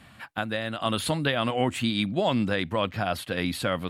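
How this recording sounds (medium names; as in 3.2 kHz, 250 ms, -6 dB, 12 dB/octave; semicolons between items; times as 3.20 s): noise floor -52 dBFS; spectral tilt -4.0 dB/octave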